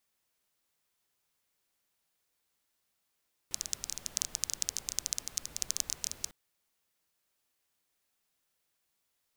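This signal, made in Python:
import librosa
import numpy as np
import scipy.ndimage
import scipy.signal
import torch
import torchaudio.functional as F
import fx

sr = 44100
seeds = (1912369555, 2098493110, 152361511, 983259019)

y = fx.rain(sr, seeds[0], length_s=2.8, drops_per_s=15.0, hz=6200.0, bed_db=-15)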